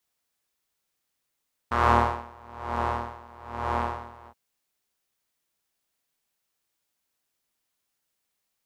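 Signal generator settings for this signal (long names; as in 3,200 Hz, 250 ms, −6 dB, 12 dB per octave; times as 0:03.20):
subtractive patch with tremolo D#2, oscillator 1 triangle, interval +7 semitones, detune 30 cents, oscillator 2 level −10 dB, noise −28 dB, filter bandpass, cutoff 850 Hz, Q 3.1, filter envelope 0.5 octaves, attack 8.5 ms, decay 0.55 s, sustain −10 dB, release 0.07 s, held 2.56 s, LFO 1.1 Hz, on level 22 dB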